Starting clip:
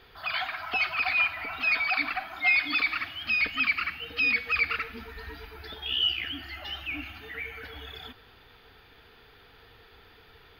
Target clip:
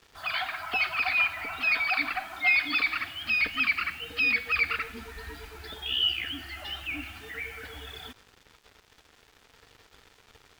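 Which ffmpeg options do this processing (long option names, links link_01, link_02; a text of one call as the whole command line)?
ffmpeg -i in.wav -af "acrusher=bits=7:mix=0:aa=0.5" out.wav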